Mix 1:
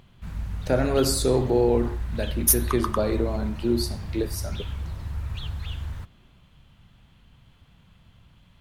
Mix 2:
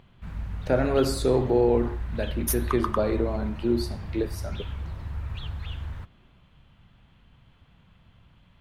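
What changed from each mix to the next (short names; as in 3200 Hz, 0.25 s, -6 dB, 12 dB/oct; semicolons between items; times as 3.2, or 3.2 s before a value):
master: add tone controls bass -2 dB, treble -10 dB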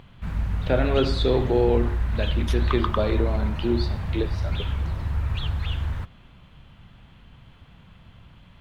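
speech: add synth low-pass 3400 Hz, resonance Q 4.1; background +7.5 dB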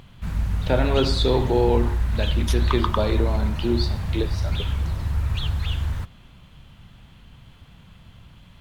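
speech: add bell 920 Hz +9.5 dB 0.23 oct; master: add tone controls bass +2 dB, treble +10 dB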